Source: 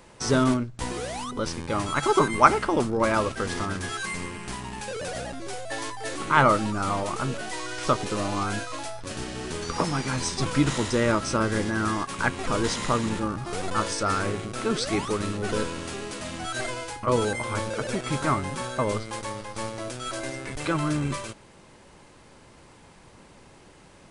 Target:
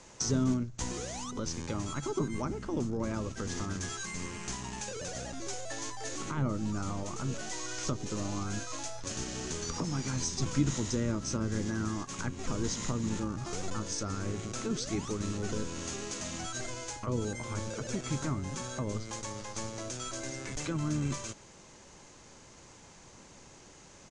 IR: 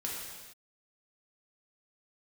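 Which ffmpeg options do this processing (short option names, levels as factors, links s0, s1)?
-filter_complex "[0:a]acrossover=split=330[s0][s1];[s1]acompressor=threshold=0.0158:ratio=8[s2];[s0][s2]amix=inputs=2:normalize=0,asplit=2[s3][s4];[s4]asetrate=33038,aresample=44100,atempo=1.33484,volume=0.158[s5];[s3][s5]amix=inputs=2:normalize=0,lowpass=f=6600:t=q:w=5.1,volume=0.631"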